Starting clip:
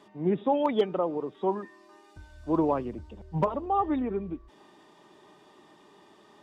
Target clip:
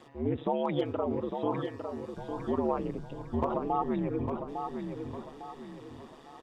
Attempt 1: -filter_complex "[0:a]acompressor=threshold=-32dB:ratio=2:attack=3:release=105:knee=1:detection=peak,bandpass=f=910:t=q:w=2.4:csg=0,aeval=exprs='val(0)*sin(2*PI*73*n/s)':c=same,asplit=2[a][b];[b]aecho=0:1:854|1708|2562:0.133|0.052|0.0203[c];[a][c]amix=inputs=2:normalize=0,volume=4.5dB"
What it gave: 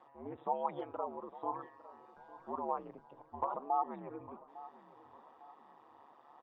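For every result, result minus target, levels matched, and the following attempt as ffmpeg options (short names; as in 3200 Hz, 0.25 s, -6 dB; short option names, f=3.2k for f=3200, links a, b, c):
echo-to-direct -11 dB; 1000 Hz band +4.0 dB
-filter_complex "[0:a]acompressor=threshold=-32dB:ratio=2:attack=3:release=105:knee=1:detection=peak,bandpass=f=910:t=q:w=2.4:csg=0,aeval=exprs='val(0)*sin(2*PI*73*n/s)':c=same,asplit=2[a][b];[b]aecho=0:1:854|1708|2562|3416|4270:0.473|0.185|0.072|0.0281|0.0109[c];[a][c]amix=inputs=2:normalize=0,volume=4.5dB"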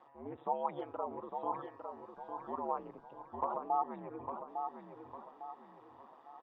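1000 Hz band +5.5 dB
-filter_complex "[0:a]acompressor=threshold=-32dB:ratio=2:attack=3:release=105:knee=1:detection=peak,aeval=exprs='val(0)*sin(2*PI*73*n/s)':c=same,asplit=2[a][b];[b]aecho=0:1:854|1708|2562|3416|4270:0.473|0.185|0.072|0.0281|0.0109[c];[a][c]amix=inputs=2:normalize=0,volume=4.5dB"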